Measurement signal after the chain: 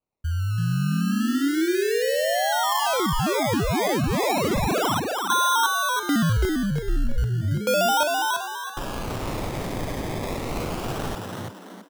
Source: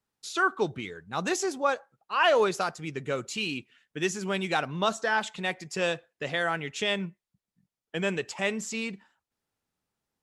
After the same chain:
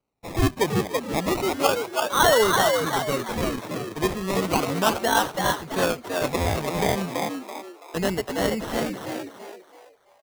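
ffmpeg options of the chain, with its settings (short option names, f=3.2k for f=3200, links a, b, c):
-filter_complex "[0:a]acrusher=samples=25:mix=1:aa=0.000001:lfo=1:lforange=15:lforate=0.33,asplit=6[a][b][c][d][e][f];[b]adelay=332,afreqshift=88,volume=-3.5dB[g];[c]adelay=664,afreqshift=176,volume=-12.6dB[h];[d]adelay=996,afreqshift=264,volume=-21.7dB[i];[e]adelay=1328,afreqshift=352,volume=-30.9dB[j];[f]adelay=1660,afreqshift=440,volume=-40dB[k];[a][g][h][i][j][k]amix=inputs=6:normalize=0,volume=4dB"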